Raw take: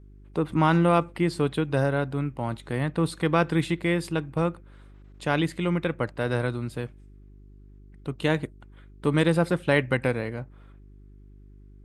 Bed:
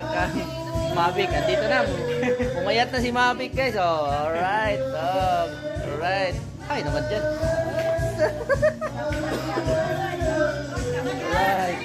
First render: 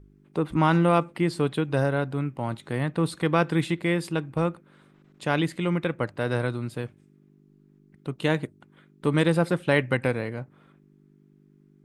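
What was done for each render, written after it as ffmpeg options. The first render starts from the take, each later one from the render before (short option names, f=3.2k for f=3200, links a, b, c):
-af "bandreject=f=50:t=h:w=4,bandreject=f=100:t=h:w=4"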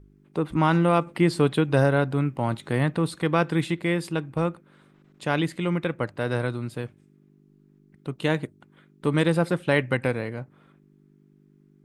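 -filter_complex "[0:a]asplit=3[a][b][c];[a]atrim=end=1.072[d];[b]atrim=start=1.068:end=2.982,asetpts=PTS-STARTPTS,volume=4dB[e];[c]atrim=start=2.978[f];[d][e]acrossfade=d=0.004:c1=hsin:c2=hsin[g];[g][f]acrossfade=d=0.004:c1=hsin:c2=hsin"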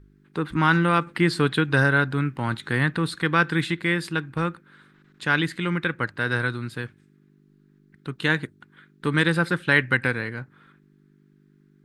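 -af "equalizer=f=630:t=o:w=0.67:g=-9,equalizer=f=1.6k:t=o:w=0.67:g=11,equalizer=f=4k:t=o:w=0.67:g=6"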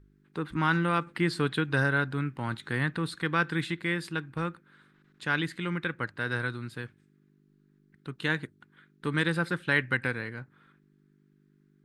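-af "volume=-6.5dB"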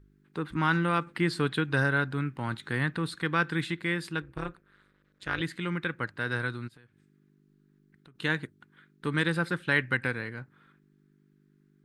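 -filter_complex "[0:a]asettb=1/sr,asplit=3[a][b][c];[a]atrim=end=4.224[d];[b]atrim=start=4.22:end=5.41,asetpts=PTS-STARTPTS,afade=t=in:d=0.004:c=qsin,afade=t=out:st=1.186:d=0.004:c=qsin,tremolo=f=200:d=0.947[e];[c]atrim=start=5.406[f];[d][e]acrossfade=d=0.004:c1=hsin:c2=qsin[g];[g][f]acrossfade=d=0.004:c1=qsin:c2=hsin,asplit=3[h][i][j];[h]afade=t=out:st=6.67:d=0.02[k];[i]acompressor=threshold=-54dB:ratio=5:attack=3.2:release=140:knee=1:detection=peak,afade=t=in:st=6.67:d=0.02,afade=t=out:st=8.14:d=0.02[l];[j]afade=t=in:st=8.14:d=0.02[m];[k][l][m]amix=inputs=3:normalize=0"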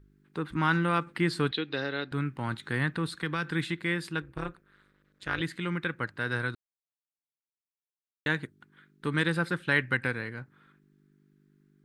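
-filter_complex "[0:a]asettb=1/sr,asplit=3[a][b][c];[a]atrim=end=1.514[d];[b]atrim=start=1.51:end=2.12,asetpts=PTS-STARTPTS,afade=t=in:d=0.004:c=qsin,afade=t=out:st=0.606:d=0.004:c=qsin,highpass=310,equalizer=f=650:t=q:w=4:g=-4,equalizer=f=1k:t=q:w=4:g=-10,equalizer=f=1.5k:t=q:w=4:g=-10,equalizer=f=4k:t=q:w=4:g=8,lowpass=f=5k:w=0.5412,lowpass=f=5k:w=1.3066[e];[c]atrim=start=2.116[f];[d][e]acrossfade=d=0.004:c1=hsin:c2=qsin[g];[g][f]acrossfade=d=0.004:c1=qsin:c2=hsin,asettb=1/sr,asplit=3[h][i][j];[h]atrim=end=3.074[k];[i]atrim=start=3.07:end=3.51,asetpts=PTS-STARTPTS,afade=t=in:d=0.004:c=qsin,afade=t=out:st=0.436:d=0.004:c=qsin,acrossover=split=150|3000[l][m][n];[m]acompressor=threshold=-27dB:ratio=6:attack=3.2:release=140:knee=2.83:detection=peak[o];[l][o][n]amix=inputs=3:normalize=0[p];[j]atrim=start=3.506[q];[k][p]acrossfade=d=0.004:c1=hsin:c2=qsin[r];[r][q]acrossfade=d=0.004:c1=qsin:c2=hsin,asplit=3[s][t][u];[s]atrim=end=6.55,asetpts=PTS-STARTPTS,afade=t=out:st=6.546:d=0.004:c=hsin[v];[t]atrim=start=6.55:end=8.26,asetpts=PTS-STARTPTS,volume=0[w];[u]atrim=start=8.26,asetpts=PTS-STARTPTS,afade=t=in:d=0.004:c=hsin[x];[v][w][x]concat=n=3:v=0:a=1"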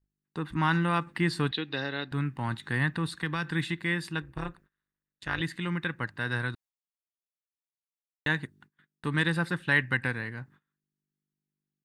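-af "agate=range=-26dB:threshold=-55dB:ratio=16:detection=peak,aecho=1:1:1.1:0.34"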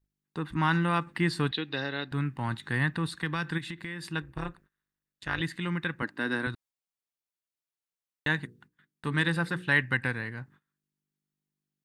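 -filter_complex "[0:a]asplit=3[a][b][c];[a]afade=t=out:st=3.57:d=0.02[d];[b]acompressor=threshold=-33dB:ratio=12:attack=3.2:release=140:knee=1:detection=peak,afade=t=in:st=3.57:d=0.02,afade=t=out:st=4.05:d=0.02[e];[c]afade=t=in:st=4.05:d=0.02[f];[d][e][f]amix=inputs=3:normalize=0,asettb=1/sr,asplit=3[g][h][i];[g]atrim=end=6.024[j];[h]atrim=start=6.02:end=6.47,asetpts=PTS-STARTPTS,afade=t=in:d=0.004:c=qsin,afade=t=out:st=0.446:d=0.004:c=qsin,highpass=f=270:t=q:w=3.1[k];[i]atrim=start=6.466[l];[j][k]acrossfade=d=0.004:c1=hsin:c2=qsin[m];[m][l]acrossfade=d=0.004:c1=qsin:c2=hsin,asettb=1/sr,asplit=3[n][o][p];[n]atrim=end=8.364[q];[o]atrim=start=8.36:end=9.7,asetpts=PTS-STARTPTS,afade=t=in:d=0.004:c=qsin,afade=t=out:st=1.336:d=0.004:c=qsin,bandreject=f=60:t=h:w=6,bandreject=f=120:t=h:w=6,bandreject=f=180:t=h:w=6,bandreject=f=240:t=h:w=6,bandreject=f=300:t=h:w=6,bandreject=f=360:t=h:w=6,bandreject=f=420:t=h:w=6,bandreject=f=480:t=h:w=6[r];[p]atrim=start=9.696[s];[q][r]acrossfade=d=0.004:c1=hsin:c2=qsin[t];[t][s]acrossfade=d=0.004:c1=qsin:c2=hsin"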